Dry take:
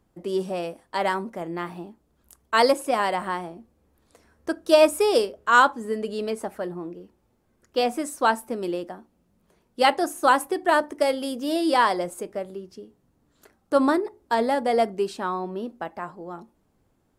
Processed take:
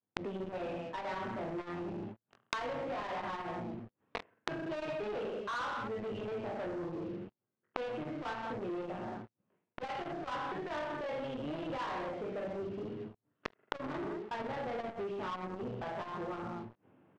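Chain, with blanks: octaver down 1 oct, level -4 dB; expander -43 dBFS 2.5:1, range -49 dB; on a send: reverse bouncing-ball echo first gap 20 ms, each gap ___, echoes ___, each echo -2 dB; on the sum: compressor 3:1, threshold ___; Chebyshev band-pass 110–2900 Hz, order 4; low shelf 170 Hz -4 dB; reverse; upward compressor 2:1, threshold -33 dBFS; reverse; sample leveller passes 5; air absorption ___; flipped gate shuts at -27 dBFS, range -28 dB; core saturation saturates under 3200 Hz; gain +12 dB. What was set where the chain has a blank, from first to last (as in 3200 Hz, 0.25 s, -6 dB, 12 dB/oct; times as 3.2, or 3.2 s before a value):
1.15×, 7, -32 dBFS, 93 m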